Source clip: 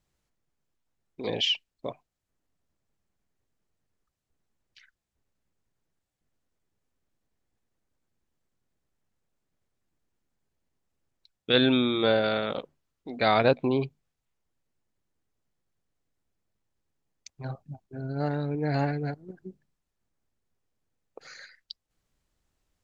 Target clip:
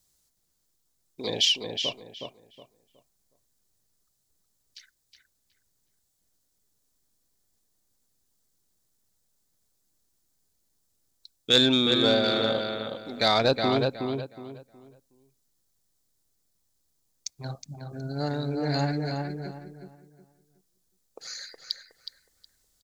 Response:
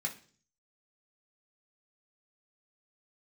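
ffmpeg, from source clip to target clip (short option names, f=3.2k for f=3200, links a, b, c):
-filter_complex "[0:a]asplit=2[a][b];[b]adelay=367,lowpass=f=3k:p=1,volume=-4.5dB,asplit=2[c][d];[d]adelay=367,lowpass=f=3k:p=1,volume=0.28,asplit=2[e][f];[f]adelay=367,lowpass=f=3k:p=1,volume=0.28,asplit=2[g][h];[h]adelay=367,lowpass=f=3k:p=1,volume=0.28[i];[a][c][e][g][i]amix=inputs=5:normalize=0,asoftclip=type=tanh:threshold=-9dB,asplit=2[j][k];[1:a]atrim=start_sample=2205,lowpass=3k[l];[k][l]afir=irnorm=-1:irlink=0,volume=-22dB[m];[j][m]amix=inputs=2:normalize=0,aexciter=amount=3.1:drive=8.3:freq=3.7k"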